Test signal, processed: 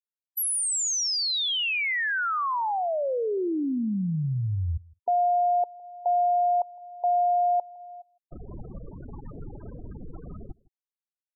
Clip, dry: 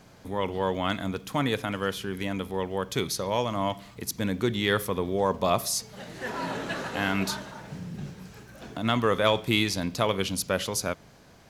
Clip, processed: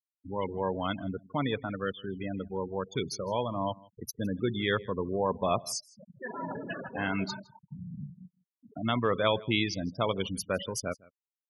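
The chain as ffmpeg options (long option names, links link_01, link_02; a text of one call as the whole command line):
ffmpeg -i in.wav -filter_complex "[0:a]asplit=2[link_01][link_02];[link_02]aecho=0:1:100|200|300:0.0631|0.0322|0.0164[link_03];[link_01][link_03]amix=inputs=2:normalize=0,afftfilt=real='re*gte(hypot(re,im),0.0562)':imag='im*gte(hypot(re,im),0.0562)':win_size=1024:overlap=0.75,asplit=2[link_04][link_05];[link_05]aecho=0:1:160:0.0631[link_06];[link_04][link_06]amix=inputs=2:normalize=0,volume=-3.5dB" out.wav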